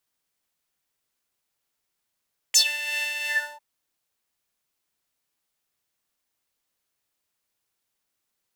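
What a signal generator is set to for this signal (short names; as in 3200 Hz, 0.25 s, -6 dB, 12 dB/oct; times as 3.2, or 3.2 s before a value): synth patch with tremolo D5, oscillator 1 triangle, interval +7 st, oscillator 2 level -5 dB, sub -16 dB, filter highpass, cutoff 920 Hz, Q 7.8, filter envelope 3 oct, filter decay 0.13 s, filter sustain 45%, attack 16 ms, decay 0.08 s, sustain -16.5 dB, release 0.32 s, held 0.73 s, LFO 2.8 Hz, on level 4 dB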